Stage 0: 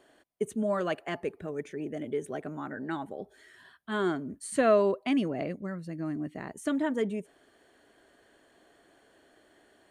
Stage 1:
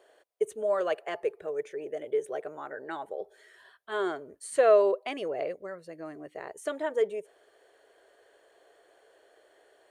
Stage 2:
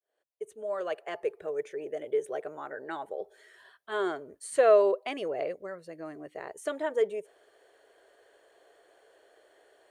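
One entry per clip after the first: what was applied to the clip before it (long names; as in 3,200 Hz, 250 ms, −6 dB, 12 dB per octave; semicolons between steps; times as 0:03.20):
low shelf with overshoot 330 Hz −11.5 dB, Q 3; level −1.5 dB
fade in at the beginning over 1.44 s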